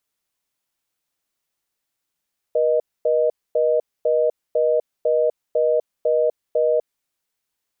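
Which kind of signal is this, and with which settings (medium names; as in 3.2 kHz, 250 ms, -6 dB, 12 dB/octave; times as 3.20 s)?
call progress tone reorder tone, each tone -18 dBFS 4.40 s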